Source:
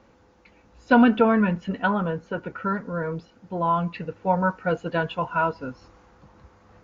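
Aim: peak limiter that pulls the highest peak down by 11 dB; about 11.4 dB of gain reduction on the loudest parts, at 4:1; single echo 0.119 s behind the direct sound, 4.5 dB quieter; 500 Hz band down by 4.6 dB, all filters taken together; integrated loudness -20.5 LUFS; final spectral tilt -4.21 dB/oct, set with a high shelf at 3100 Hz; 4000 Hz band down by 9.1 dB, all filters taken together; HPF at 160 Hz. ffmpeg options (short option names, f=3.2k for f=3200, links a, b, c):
-af "highpass=160,equalizer=f=500:t=o:g=-5,highshelf=f=3.1k:g=-9,equalizer=f=4k:t=o:g=-7.5,acompressor=threshold=-28dB:ratio=4,alimiter=level_in=4.5dB:limit=-24dB:level=0:latency=1,volume=-4.5dB,aecho=1:1:119:0.596,volume=16.5dB"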